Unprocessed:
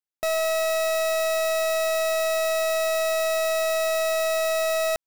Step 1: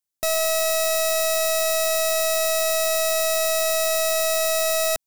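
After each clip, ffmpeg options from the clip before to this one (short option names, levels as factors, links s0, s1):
-af "bass=f=250:g=6,treble=f=4000:g=10"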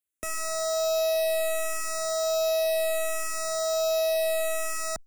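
-filter_complex "[0:a]acrossover=split=630[s0][s1];[s1]asoftclip=type=tanh:threshold=0.106[s2];[s0][s2]amix=inputs=2:normalize=0,asplit=2[s3][s4];[s4]afreqshift=-0.68[s5];[s3][s5]amix=inputs=2:normalize=1"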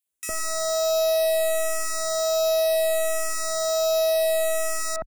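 -filter_complex "[0:a]acrossover=split=1900[s0][s1];[s0]adelay=60[s2];[s2][s1]amix=inputs=2:normalize=0,volume=1.58"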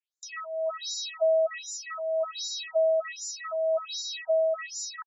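-af "afftfilt=real='re*between(b*sr/1024,510*pow(5500/510,0.5+0.5*sin(2*PI*1.3*pts/sr))/1.41,510*pow(5500/510,0.5+0.5*sin(2*PI*1.3*pts/sr))*1.41)':imag='im*between(b*sr/1024,510*pow(5500/510,0.5+0.5*sin(2*PI*1.3*pts/sr))/1.41,510*pow(5500/510,0.5+0.5*sin(2*PI*1.3*pts/sr))*1.41)':win_size=1024:overlap=0.75"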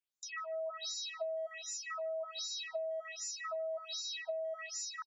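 -filter_complex "[0:a]asplit=2[s0][s1];[s1]adelay=150,highpass=300,lowpass=3400,asoftclip=type=hard:threshold=0.0447,volume=0.0891[s2];[s0][s2]amix=inputs=2:normalize=0,acompressor=threshold=0.0224:ratio=12,volume=0.668"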